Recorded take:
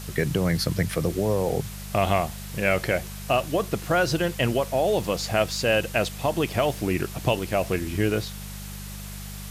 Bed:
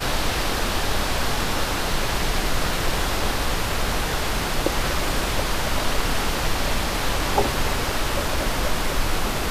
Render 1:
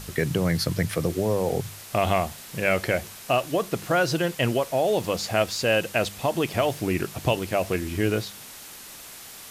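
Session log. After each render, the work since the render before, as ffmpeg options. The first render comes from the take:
-af "bandreject=f=50:t=h:w=4,bandreject=f=100:t=h:w=4,bandreject=f=150:t=h:w=4,bandreject=f=200:t=h:w=4"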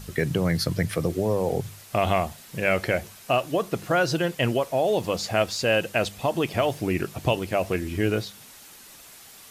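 -af "afftdn=nr=6:nf=-43"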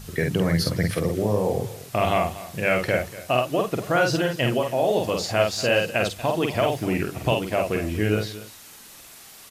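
-filter_complex "[0:a]asplit=2[a][b];[b]adelay=48,volume=-3.5dB[c];[a][c]amix=inputs=2:normalize=0,aecho=1:1:238:0.15"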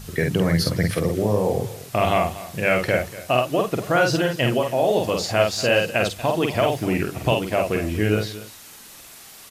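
-af "volume=2dB"

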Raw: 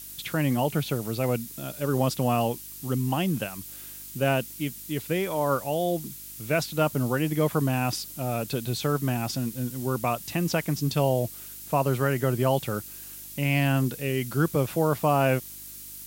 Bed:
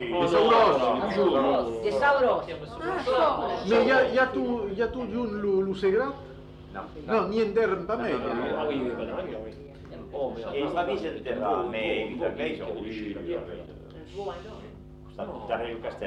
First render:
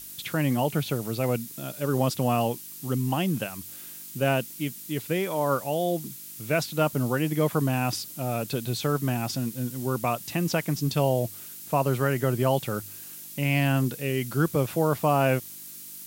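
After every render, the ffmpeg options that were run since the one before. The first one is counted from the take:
-af "bandreject=f=50:t=h:w=4,bandreject=f=100:t=h:w=4"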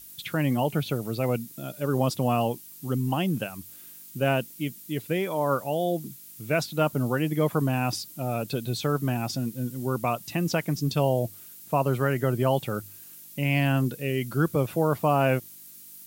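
-af "afftdn=nr=7:nf=-42"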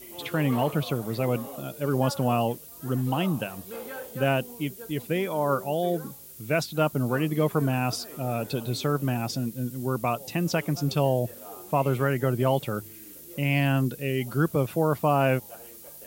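-filter_complex "[1:a]volume=-17.5dB[a];[0:a][a]amix=inputs=2:normalize=0"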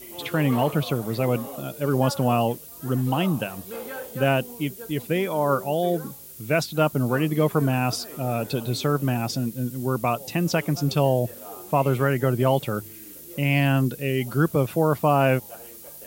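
-af "volume=3dB"

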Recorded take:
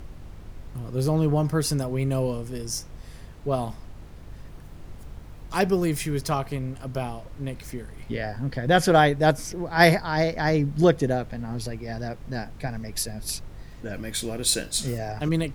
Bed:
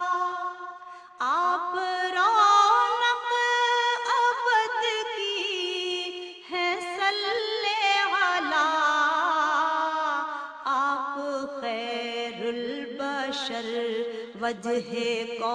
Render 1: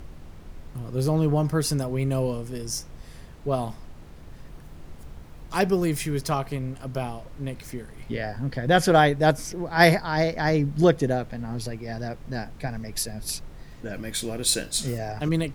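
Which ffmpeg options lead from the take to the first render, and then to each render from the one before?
-af "bandreject=f=50:t=h:w=4,bandreject=f=100:t=h:w=4"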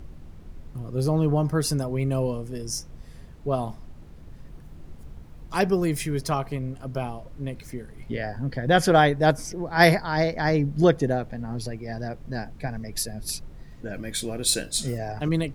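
-af "afftdn=nr=6:nf=-45"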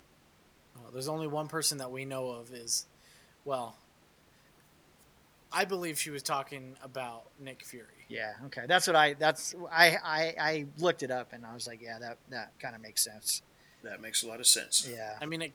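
-af "highpass=f=1.4k:p=1"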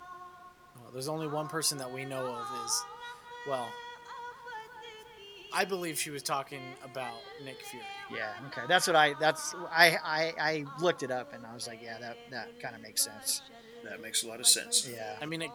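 -filter_complex "[1:a]volume=-21dB[a];[0:a][a]amix=inputs=2:normalize=0"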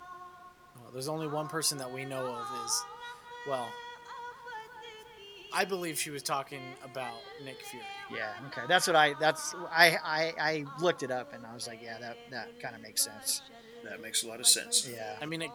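-af anull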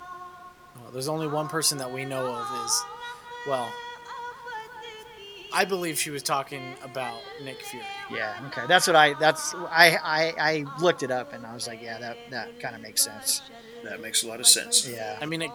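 -af "volume=6.5dB,alimiter=limit=-1dB:level=0:latency=1"

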